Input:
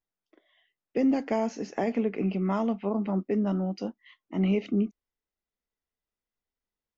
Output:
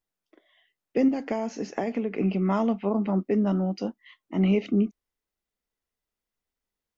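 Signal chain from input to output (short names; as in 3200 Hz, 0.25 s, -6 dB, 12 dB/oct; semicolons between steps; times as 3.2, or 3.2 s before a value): 1.08–2.11 compressor, threshold -27 dBFS, peak gain reduction 6.5 dB; gain +3 dB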